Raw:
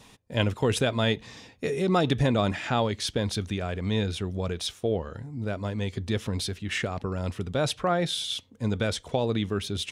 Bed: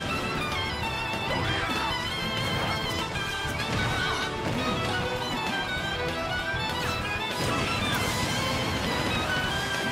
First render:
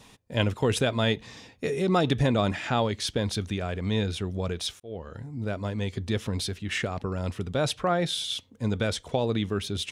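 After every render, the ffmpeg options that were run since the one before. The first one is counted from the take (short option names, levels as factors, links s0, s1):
-filter_complex "[0:a]asplit=2[s0][s1];[s0]atrim=end=4.8,asetpts=PTS-STARTPTS,afade=t=out:st=4.796:d=0.004:c=hsin[s2];[s1]atrim=start=4.8,asetpts=PTS-STARTPTS,afade=t=in:d=0.43[s3];[s2][s3]concat=n=2:v=0:a=1"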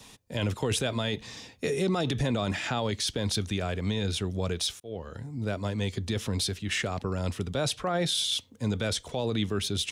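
-filter_complex "[0:a]acrossover=split=160|670|3400[s0][s1][s2][s3];[s3]acontrast=44[s4];[s0][s1][s2][s4]amix=inputs=4:normalize=0,alimiter=limit=0.112:level=0:latency=1:release=20"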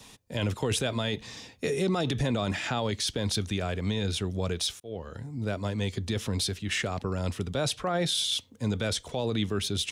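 -af anull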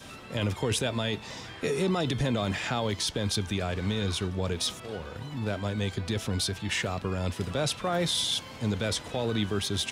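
-filter_complex "[1:a]volume=0.15[s0];[0:a][s0]amix=inputs=2:normalize=0"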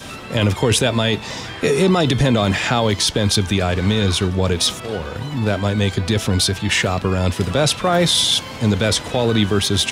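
-af "volume=3.98"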